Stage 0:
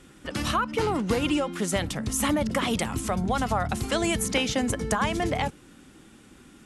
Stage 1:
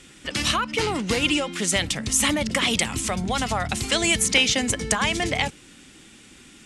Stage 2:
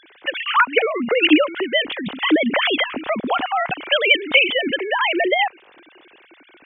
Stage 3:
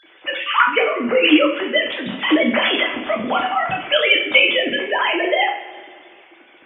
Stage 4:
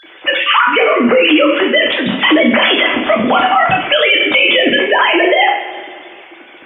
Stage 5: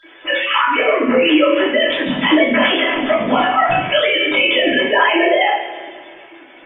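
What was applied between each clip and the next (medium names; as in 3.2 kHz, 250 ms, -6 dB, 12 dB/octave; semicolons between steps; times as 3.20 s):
high-order bell 4.2 kHz +9.5 dB 2.6 oct
formants replaced by sine waves; trim +4.5 dB
two-slope reverb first 0.46 s, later 2.2 s, from -18 dB, DRR -2 dB; trim -3 dB
loudness maximiser +11.5 dB; trim -1 dB
simulated room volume 140 m³, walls furnished, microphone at 2.9 m; trim -10.5 dB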